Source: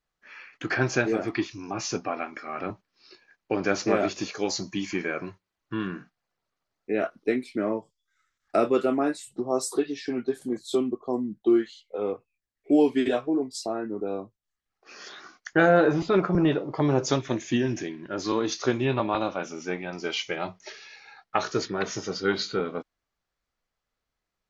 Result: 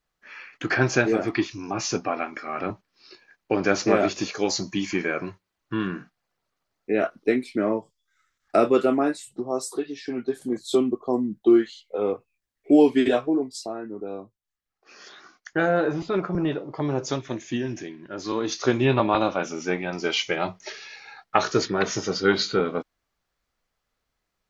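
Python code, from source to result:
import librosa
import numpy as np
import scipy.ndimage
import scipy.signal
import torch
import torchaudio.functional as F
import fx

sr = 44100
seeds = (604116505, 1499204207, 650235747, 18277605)

y = fx.gain(x, sr, db=fx.line((8.89, 3.5), (9.8, -3.0), (10.72, 4.0), (13.22, 4.0), (13.75, -3.0), (18.19, -3.0), (18.85, 5.0)))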